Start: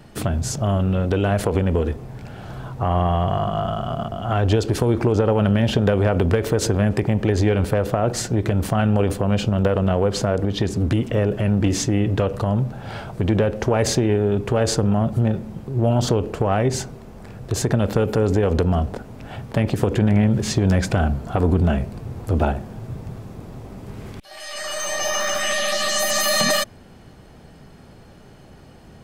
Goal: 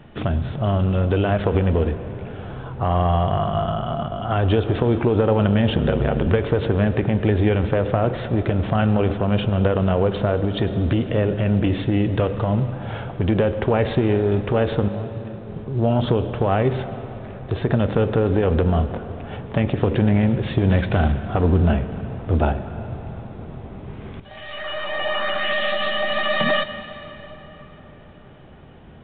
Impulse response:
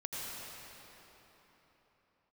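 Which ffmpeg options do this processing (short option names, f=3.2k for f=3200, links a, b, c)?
-filter_complex "[0:a]asettb=1/sr,asplit=3[a][b][c];[a]atrim=end=5.734[d];[b]atrim=start=5.73:end=6.27,asetpts=PTS-STARTPTS,afade=t=in:d=0.004:c=qsin,afade=t=out:st=0.536:d=0.004:c=qsin,aeval=exprs='val(0)*sin(2*PI*37*n/s)':c=same[e];[c]atrim=start=6.266[f];[d][e]acrossfade=d=0.004:c1=hsin:c2=qsin[g];[g][f]acrossfade=d=0.004:c1=qsin:c2=hsin,asettb=1/sr,asplit=3[h][i][j];[h]atrim=end=14.884[k];[i]atrim=start=14.88:end=15.5,asetpts=PTS-STARTPTS,afade=t=in:d=0.004:c=qsin,afade=t=out:st=0.616:d=0.004:c=qsin,acompressor=threshold=-29dB:ratio=6[l];[j]atrim=start=15.496[m];[k][l]acrossfade=d=0.004:c1=hsin:c2=qsin[n];[n][m]acrossfade=d=0.004:c1=qsin:c2=hsin,asettb=1/sr,asplit=3[o][p][q];[o]atrim=end=20.704[r];[p]atrim=start=20.7:end=21.12,asetpts=PTS-STARTPTS,afade=t=in:d=0.004:c=qsin,afade=t=out:st=0.416:d=0.004:c=qsin,acrusher=bits=4:mode=log:mix=0:aa=0.000001[s];[q]atrim=start=21.116[t];[r][s]acrossfade=d=0.004:c1=hsin:c2=qsin[u];[u][t]acrossfade=d=0.004:c1=qsin:c2=hsin,asplit=2[v][w];[1:a]atrim=start_sample=2205,adelay=13[x];[w][x]afir=irnorm=-1:irlink=0,volume=-12.5dB[y];[v][y]amix=inputs=2:normalize=0" -ar 8000 -c:a pcm_alaw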